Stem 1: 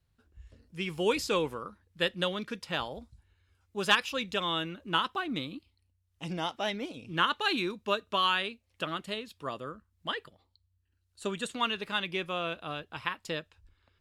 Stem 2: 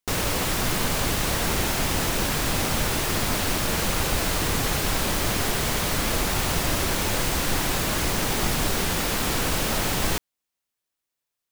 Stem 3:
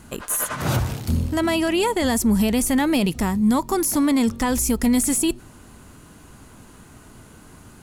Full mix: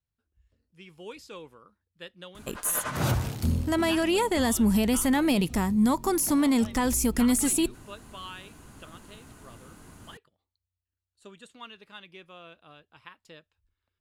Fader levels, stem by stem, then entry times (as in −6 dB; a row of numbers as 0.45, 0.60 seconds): −14.5 dB, muted, −4.0 dB; 0.00 s, muted, 2.35 s